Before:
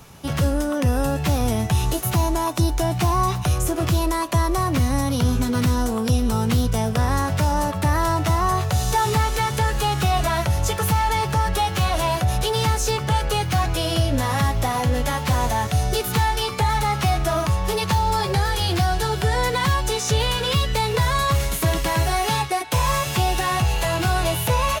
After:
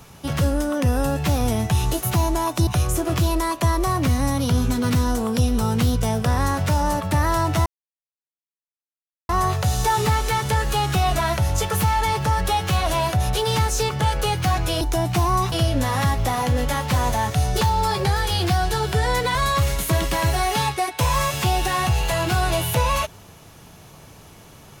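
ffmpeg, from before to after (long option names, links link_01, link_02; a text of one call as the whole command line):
ffmpeg -i in.wav -filter_complex "[0:a]asplit=7[link_01][link_02][link_03][link_04][link_05][link_06][link_07];[link_01]atrim=end=2.672[link_08];[link_02]atrim=start=3.378:end=8.37,asetpts=PTS-STARTPTS,afade=type=out:start_time=4.988:duration=0.004:curve=hsin,apad=pad_dur=1.63[link_09];[link_03]atrim=start=8.37:end=13.892,asetpts=PTS-STARTPTS,afade=type=in:duration=0.004:curve=hsin[link_10];[link_04]atrim=start=2.668:end=3.382[link_11];[link_05]atrim=start=13.888:end=15.982[link_12];[link_06]atrim=start=17.898:end=19.642[link_13];[link_07]atrim=start=21.078[link_14];[link_09][link_10]concat=n=2:v=0:a=1[link_15];[link_08][link_15]acrossfade=duration=0.004:curve1=hsin:curve2=hsin[link_16];[link_16][link_11]acrossfade=duration=0.004:curve1=hsin:curve2=hsin[link_17];[link_17][link_12]acrossfade=duration=0.004:curve1=hsin:curve2=hsin[link_18];[link_18][link_13]acrossfade=duration=0.004:curve1=hsin:curve2=hsin[link_19];[link_19][link_14]acrossfade=duration=0.004:curve1=hsin:curve2=hsin" out.wav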